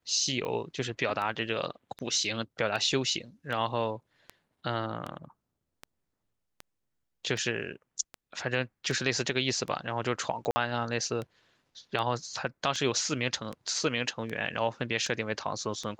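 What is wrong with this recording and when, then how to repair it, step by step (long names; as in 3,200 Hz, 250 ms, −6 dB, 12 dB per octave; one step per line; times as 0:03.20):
scratch tick 78 rpm −23 dBFS
0:10.51–0:10.56: drop-out 50 ms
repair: click removal
repair the gap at 0:10.51, 50 ms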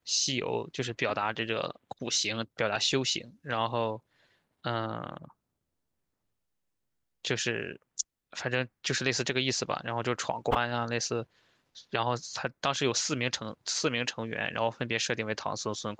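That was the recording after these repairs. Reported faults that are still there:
none of them is left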